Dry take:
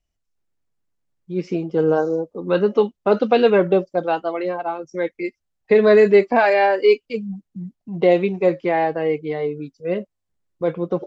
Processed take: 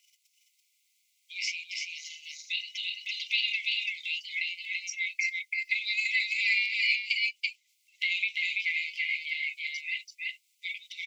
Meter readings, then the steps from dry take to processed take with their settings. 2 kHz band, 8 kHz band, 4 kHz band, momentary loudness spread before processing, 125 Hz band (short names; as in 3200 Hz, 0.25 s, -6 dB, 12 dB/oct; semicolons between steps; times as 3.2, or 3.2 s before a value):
+0.5 dB, n/a, +6.0 dB, 14 LU, under -40 dB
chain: transient shaper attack -2 dB, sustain +8 dB; echo 0.335 s -3.5 dB; in parallel at +1.5 dB: compressor, threshold -18 dBFS, peak gain reduction 11 dB; on the sum: brick-wall FIR high-pass 2000 Hz; three-band squash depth 40%